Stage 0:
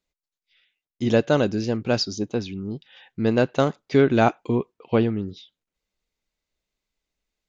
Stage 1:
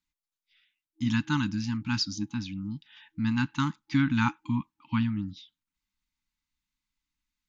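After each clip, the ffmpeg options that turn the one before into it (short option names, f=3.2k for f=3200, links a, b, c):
-af "afftfilt=real='re*(1-between(b*sr/4096,320,830))':imag='im*(1-between(b*sr/4096,320,830))':win_size=4096:overlap=0.75,volume=-3.5dB"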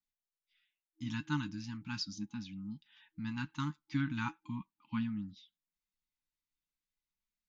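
-af "flanger=delay=4.7:depth=2:regen=49:speed=0.39:shape=sinusoidal,volume=-6dB"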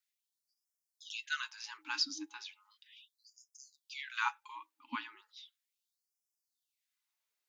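-af "afftfilt=real='re*gte(b*sr/1024,250*pow(5000/250,0.5+0.5*sin(2*PI*0.36*pts/sr)))':imag='im*gte(b*sr/1024,250*pow(5000/250,0.5+0.5*sin(2*PI*0.36*pts/sr)))':win_size=1024:overlap=0.75,volume=6.5dB"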